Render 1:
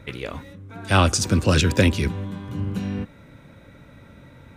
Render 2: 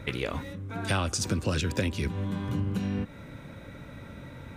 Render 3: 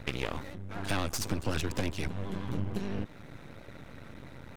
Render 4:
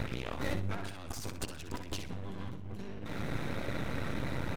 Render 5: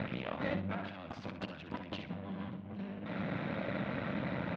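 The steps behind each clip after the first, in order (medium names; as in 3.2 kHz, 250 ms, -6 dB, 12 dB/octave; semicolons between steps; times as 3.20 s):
compression 6:1, threshold -29 dBFS, peak gain reduction 16 dB; trim +3 dB
half-wave rectifier; vibrato 12 Hz 56 cents
compressor with a negative ratio -43 dBFS, ratio -1; on a send: feedback delay 63 ms, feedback 26%, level -9 dB; on the sum: trim +4 dB
cabinet simulation 140–3400 Hz, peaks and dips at 190 Hz +7 dB, 400 Hz -6 dB, 610 Hz +5 dB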